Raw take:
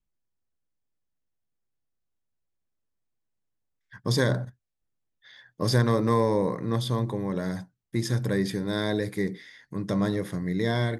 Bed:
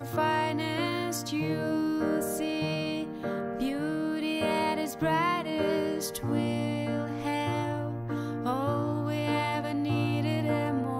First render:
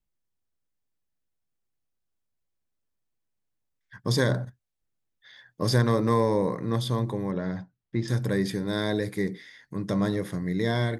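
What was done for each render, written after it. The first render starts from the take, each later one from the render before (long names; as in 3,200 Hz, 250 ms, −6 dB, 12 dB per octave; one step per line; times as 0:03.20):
0:07.31–0:08.08: high-frequency loss of the air 200 metres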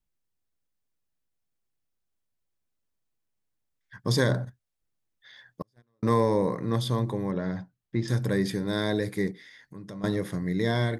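0:05.62–0:06.03: noise gate −15 dBFS, range −51 dB
0:09.31–0:10.04: downward compressor 2 to 1, threshold −47 dBFS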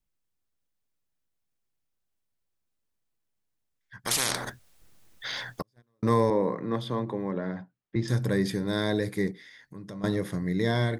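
0:04.05–0:05.61: every bin compressed towards the loudest bin 10 to 1
0:06.30–0:07.96: three-way crossover with the lows and the highs turned down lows −14 dB, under 160 Hz, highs −14 dB, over 3,400 Hz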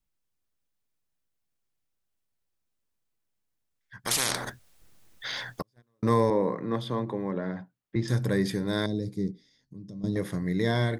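0:08.86–0:10.16: drawn EQ curve 250 Hz 0 dB, 1,700 Hz −25 dB, 5,400 Hz −4 dB, 10,000 Hz −15 dB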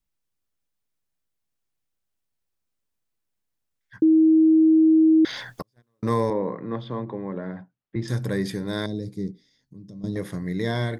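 0:04.02–0:05.25: beep over 318 Hz −12.5 dBFS
0:06.33–0:08.02: high-frequency loss of the air 210 metres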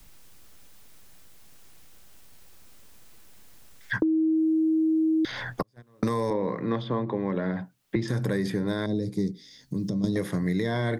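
brickwall limiter −18.5 dBFS, peak gain reduction 6.5 dB
multiband upward and downward compressor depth 100%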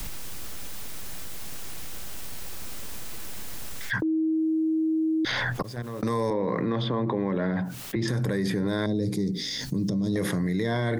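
brickwall limiter −21.5 dBFS, peak gain reduction 8.5 dB
envelope flattener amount 70%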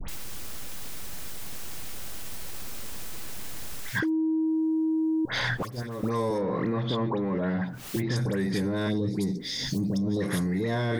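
soft clipping −18 dBFS, distortion −23 dB
all-pass dispersion highs, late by 86 ms, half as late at 1,600 Hz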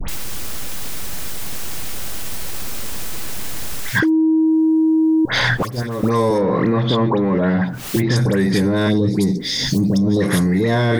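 level +11 dB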